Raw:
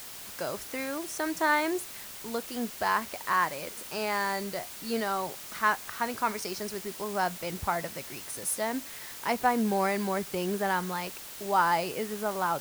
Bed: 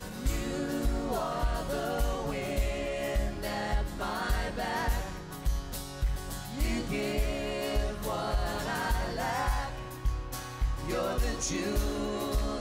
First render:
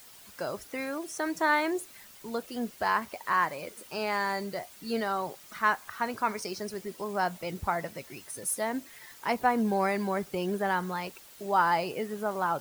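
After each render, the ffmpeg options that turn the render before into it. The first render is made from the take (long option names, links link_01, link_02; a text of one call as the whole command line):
ffmpeg -i in.wav -af "afftdn=noise_reduction=10:noise_floor=-43" out.wav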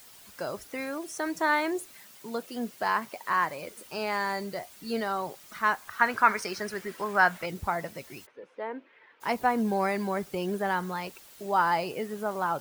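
ffmpeg -i in.wav -filter_complex "[0:a]asettb=1/sr,asplit=3[link_01][link_02][link_03];[link_01]atrim=end=1.964[link_04];[link_02]atrim=start=1.96:end=3.5,asetpts=PTS-STARTPTS,afade=type=in:duration=0.004:curve=qsin,afade=type=out:start_time=1.536:duration=0.004:curve=qsin,highpass=frequency=110:width=0.5412,highpass=frequency=110:width=1.3066[link_05];[link_03]atrim=start=3.496[link_06];[link_04][link_05]acrossfade=duration=0.004:curve1=hsin:curve2=qsin[link_07];[link_07][link_06]acrossfade=duration=0.004:curve1=qsin:curve2=hsin,asettb=1/sr,asplit=3[link_08][link_09][link_10];[link_08]atrim=end=5.994[link_11];[link_09]atrim=start=5.99:end=7.46,asetpts=PTS-STARTPTS,afade=type=in:duration=0.004:curve=qsin,afade=type=out:start_time=1.466:duration=0.004:curve=qsin,equalizer=frequency=1600:width_type=o:width=1.3:gain=13[link_12];[link_10]atrim=start=7.456[link_13];[link_11][link_12]acrossfade=duration=0.004:curve1=hsin:curve2=qsin[link_14];[link_14][link_13]acrossfade=duration=0.004:curve1=qsin:curve2=hsin,asplit=3[link_15][link_16][link_17];[link_15]afade=type=out:start_time=8.25:duration=0.02[link_18];[link_16]highpass=400,equalizer=frequency=460:width_type=q:width=4:gain=5,equalizer=frequency=700:width_type=q:width=4:gain=-8,equalizer=frequency=1200:width_type=q:width=4:gain=-4,equalizer=frequency=1900:width_type=q:width=4:gain=-7,lowpass=frequency=2400:width=0.5412,lowpass=frequency=2400:width=1.3066,afade=type=in:start_time=8.25:duration=0.02,afade=type=out:start_time=9.2:duration=0.02[link_19];[link_17]afade=type=in:start_time=9.2:duration=0.02[link_20];[link_18][link_19][link_20]amix=inputs=3:normalize=0" out.wav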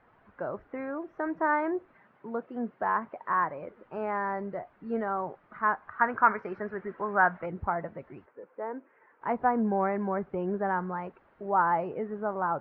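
ffmpeg -i in.wav -af "lowpass=frequency=1600:width=0.5412,lowpass=frequency=1600:width=1.3066" out.wav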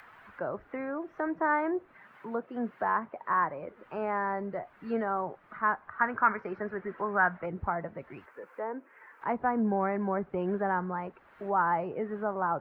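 ffmpeg -i in.wav -filter_complex "[0:a]acrossover=split=310|1100[link_01][link_02][link_03];[link_02]alimiter=limit=-23dB:level=0:latency=1:release=237[link_04];[link_03]acompressor=mode=upward:threshold=-42dB:ratio=2.5[link_05];[link_01][link_04][link_05]amix=inputs=3:normalize=0" out.wav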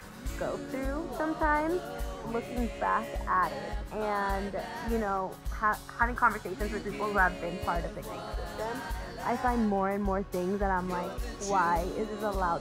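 ffmpeg -i in.wav -i bed.wav -filter_complex "[1:a]volume=-7dB[link_01];[0:a][link_01]amix=inputs=2:normalize=0" out.wav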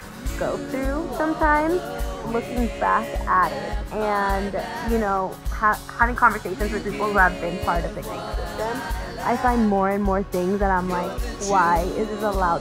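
ffmpeg -i in.wav -af "volume=8.5dB" out.wav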